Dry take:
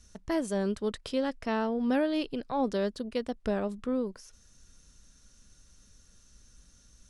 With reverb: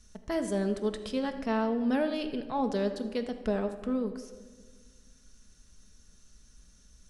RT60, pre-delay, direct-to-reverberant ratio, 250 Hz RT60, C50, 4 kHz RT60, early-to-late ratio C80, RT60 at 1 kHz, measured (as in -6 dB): 1.6 s, 5 ms, 6.0 dB, 2.1 s, 10.0 dB, 0.90 s, 11.5 dB, 1.4 s